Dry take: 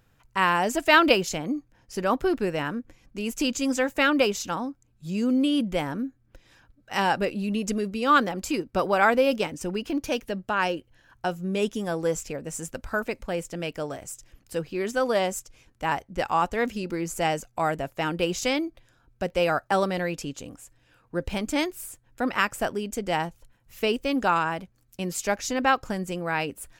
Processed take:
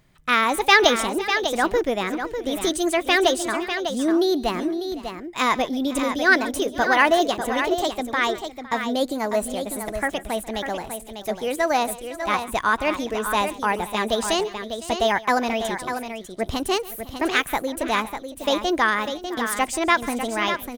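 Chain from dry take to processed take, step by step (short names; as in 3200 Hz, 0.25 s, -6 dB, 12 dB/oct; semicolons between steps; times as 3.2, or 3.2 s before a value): tapped delay 0.178/0.656/0.771 s -19.5/-18.5/-8 dB; varispeed +29%; gain +3 dB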